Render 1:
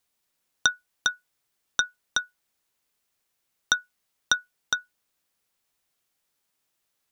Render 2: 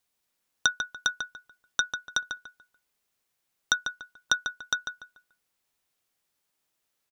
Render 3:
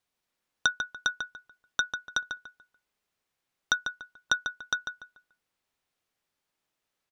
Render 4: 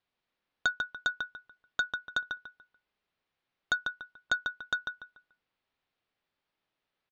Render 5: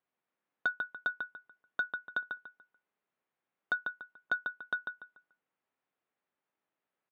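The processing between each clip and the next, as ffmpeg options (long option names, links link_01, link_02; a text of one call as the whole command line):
ffmpeg -i in.wav -filter_complex "[0:a]asplit=2[link_01][link_02];[link_02]adelay=145,lowpass=frequency=2700:poles=1,volume=-6dB,asplit=2[link_03][link_04];[link_04]adelay=145,lowpass=frequency=2700:poles=1,volume=0.31,asplit=2[link_05][link_06];[link_06]adelay=145,lowpass=frequency=2700:poles=1,volume=0.31,asplit=2[link_07][link_08];[link_08]adelay=145,lowpass=frequency=2700:poles=1,volume=0.31[link_09];[link_01][link_03][link_05][link_07][link_09]amix=inputs=5:normalize=0,volume=-2dB" out.wav
ffmpeg -i in.wav -af "highshelf=frequency=6100:gain=-10.5" out.wav
ffmpeg -i in.wav -af "lowpass=frequency=4300:width=0.5412,lowpass=frequency=4300:width=1.3066,aresample=16000,asoftclip=type=tanh:threshold=-18.5dB,aresample=44100" out.wav
ffmpeg -i in.wav -af "highpass=170,lowpass=2000,volume=-1.5dB" out.wav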